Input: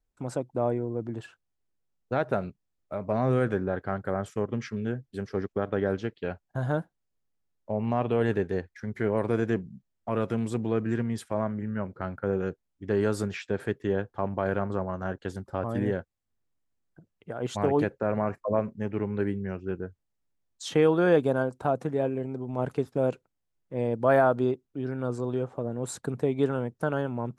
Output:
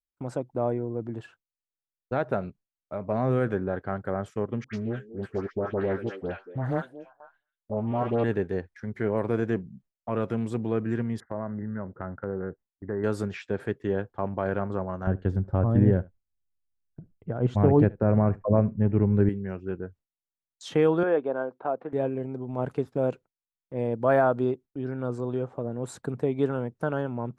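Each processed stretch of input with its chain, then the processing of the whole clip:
4.64–8.24 s: phase dispersion highs, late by 97 ms, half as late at 1.3 kHz + repeats whose band climbs or falls 233 ms, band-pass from 380 Hz, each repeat 1.4 oct, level -10.5 dB + loudspeaker Doppler distortion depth 0.3 ms
11.20–13.04 s: brick-wall FIR low-pass 2.1 kHz + compression 2:1, threshold -29 dBFS
15.07–19.29 s: RIAA curve playback + delay 73 ms -23 dB
21.03–21.93 s: band-pass 360–5100 Hz + distance through air 400 m
whole clip: gate with hold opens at -42 dBFS; treble shelf 3.8 kHz -8 dB

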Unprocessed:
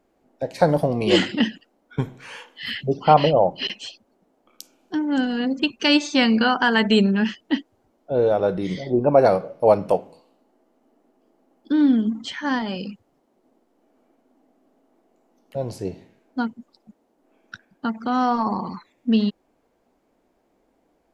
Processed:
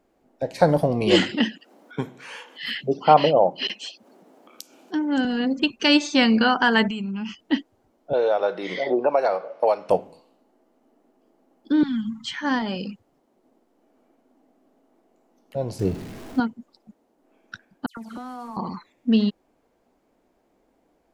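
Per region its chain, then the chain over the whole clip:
1.33–5.25 s: upward compressor, threshold -39 dBFS + high-pass 200 Hz
6.88–7.39 s: compression 5:1, threshold -24 dBFS + static phaser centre 2.6 kHz, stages 8
8.13–9.90 s: band-pass 630–5900 Hz + three bands compressed up and down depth 100%
11.83–12.34 s: inverse Chebyshev band-stop 310–650 Hz + comb 7.2 ms, depth 43%
15.79–16.40 s: jump at every zero crossing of -38 dBFS + bass shelf 270 Hz +9.5 dB
17.86–18.57 s: CVSD coder 64 kbps + compression 16:1, threshold -32 dBFS + phase dispersion lows, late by 111 ms, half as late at 2.8 kHz
whole clip: none

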